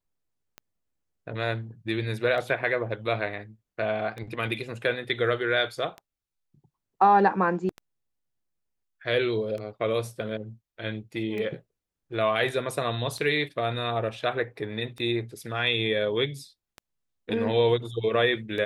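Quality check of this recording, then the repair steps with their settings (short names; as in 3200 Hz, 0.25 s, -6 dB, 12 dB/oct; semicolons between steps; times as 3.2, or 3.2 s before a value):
tick 33 1/3 rpm -24 dBFS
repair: de-click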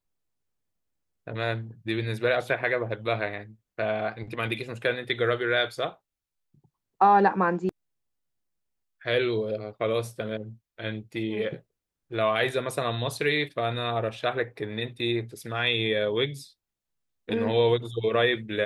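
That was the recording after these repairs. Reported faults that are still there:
none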